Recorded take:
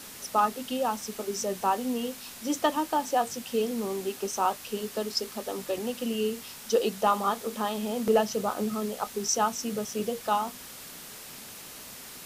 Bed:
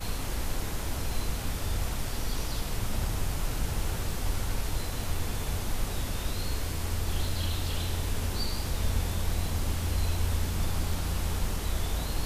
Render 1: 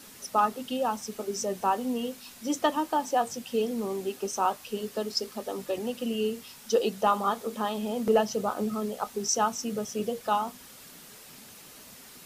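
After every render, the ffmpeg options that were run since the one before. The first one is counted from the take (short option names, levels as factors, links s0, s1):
-af "afftdn=nr=6:nf=-44"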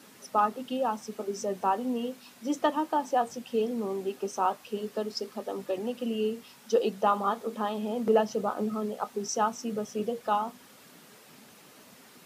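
-af "highpass=140,highshelf=f=3200:g=-9"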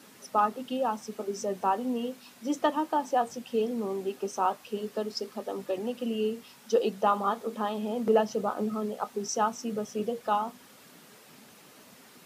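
-af anull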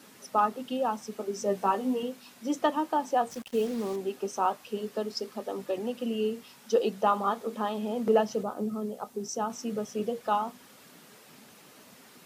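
-filter_complex "[0:a]asettb=1/sr,asplit=3[s0][s1][s2];[s0]atrim=end=1.444[s3];[s1]atrim=start=1.44:end=2.03,asetpts=PTS-STARTPTS,afade=t=in:d=0.004:c=qsin,afade=t=out:st=0.586:d=0.004:c=qsin,asplit=2[s4][s5];[s5]adelay=15,volume=0.708[s6];[s4][s6]amix=inputs=2:normalize=0,atrim=end_sample=26019[s7];[s2]atrim=start=2.026[s8];[s3][s7]acrossfade=d=0.004:c1=hsin:c2=qsin[s9];[s9][s8]acrossfade=d=0.004:c1=qsin:c2=hsin,asettb=1/sr,asplit=3[s10][s11][s12];[s10]atrim=end=3.314[s13];[s11]atrim=start=3.31:end=3.96,asetpts=PTS-STARTPTS,afade=t=in:d=0.004:c=qsin,afade=t=out:st=0.646:d=0.004:c=qsin,acrusher=bits=6:mix=0:aa=0.5[s14];[s12]atrim=start=3.956[s15];[s13][s14]acrossfade=d=0.004:c1=hsin:c2=qsin[s16];[s16][s15]acrossfade=d=0.004:c1=qsin:c2=hsin,asettb=1/sr,asplit=3[s17][s18][s19];[s17]atrim=end=8.434[s20];[s18]atrim=start=8.43:end=9.5,asetpts=PTS-STARTPTS,afade=t=in:d=0.004:c=qsin,afade=t=out:st=1.066:d=0.004:c=qsin,equalizer=f=2000:w=0.37:g=-8[s21];[s19]atrim=start=9.496[s22];[s20][s21]acrossfade=d=0.004:c1=hsin:c2=qsin[s23];[s23][s22]acrossfade=d=0.004:c1=qsin:c2=hsin"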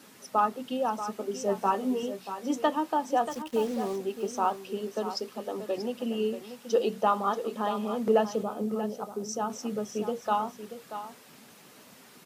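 -af "aecho=1:1:634:0.282"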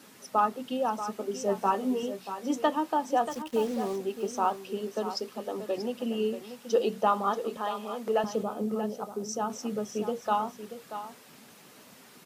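-filter_complex "[0:a]asettb=1/sr,asplit=3[s0][s1][s2];[s0]atrim=end=7.574[s3];[s1]atrim=start=7.57:end=8.24,asetpts=PTS-STARTPTS,afade=t=in:d=0.004:c=qsin,afade=t=out:st=0.666:d=0.004:c=qsin,highpass=f=610:p=1[s4];[s2]atrim=start=8.236[s5];[s3][s4]acrossfade=d=0.004:c1=hsin:c2=qsin[s6];[s6][s5]acrossfade=d=0.004:c1=qsin:c2=hsin"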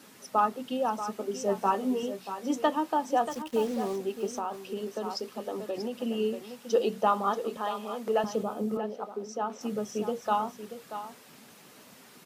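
-filter_complex "[0:a]asettb=1/sr,asplit=3[s0][s1][s2];[s0]atrim=end=4.384[s3];[s1]atrim=start=4.38:end=5.97,asetpts=PTS-STARTPTS,afade=t=in:d=0.004:c=qsin,afade=t=out:st=1.586:d=0.004:c=qsin,acompressor=threshold=0.0398:ratio=6:attack=3.2:release=140:knee=1:detection=peak[s4];[s2]atrim=start=5.966[s5];[s3][s4]acrossfade=d=0.004:c1=hsin:c2=qsin[s6];[s6][s5]acrossfade=d=0.004:c1=qsin:c2=hsin,asettb=1/sr,asplit=3[s7][s8][s9];[s7]atrim=end=8.774[s10];[s8]atrim=start=8.77:end=9.61,asetpts=PTS-STARTPTS,afade=t=in:d=0.004:c=qsin,afade=t=out:st=0.836:d=0.004:c=qsin,acrossover=split=220 4200:gain=0.158 1 0.2[s11][s12][s13];[s11][s12][s13]amix=inputs=3:normalize=0[s14];[s9]atrim=start=9.606[s15];[s10][s14]acrossfade=d=0.004:c1=hsin:c2=qsin[s16];[s16][s15]acrossfade=d=0.004:c1=qsin:c2=hsin"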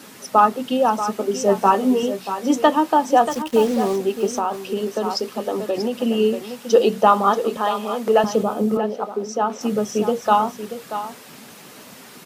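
-af "volume=3.55,alimiter=limit=0.708:level=0:latency=1"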